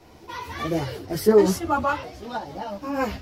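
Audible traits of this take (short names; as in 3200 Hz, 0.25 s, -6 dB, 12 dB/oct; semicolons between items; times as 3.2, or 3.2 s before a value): tremolo saw up 3.8 Hz, depth 30%; a shimmering, thickened sound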